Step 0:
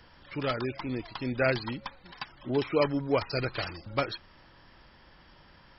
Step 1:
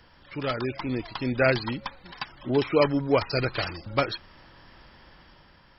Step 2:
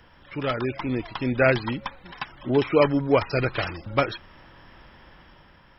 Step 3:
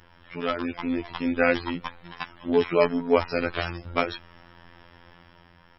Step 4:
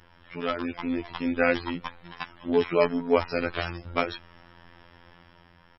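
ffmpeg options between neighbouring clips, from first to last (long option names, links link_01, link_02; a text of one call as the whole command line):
ffmpeg -i in.wav -af "dynaudnorm=framelen=110:gausssize=11:maxgain=4.5dB" out.wav
ffmpeg -i in.wav -af "equalizer=frequency=4500:width_type=o:width=0.26:gain=-14.5,volume=2.5dB" out.wav
ffmpeg -i in.wav -af "afftfilt=real='hypot(re,im)*cos(PI*b)':imag='0':win_size=2048:overlap=0.75,volume=2dB" out.wav
ffmpeg -i in.wav -af "aresample=32000,aresample=44100,volume=-1.5dB" out.wav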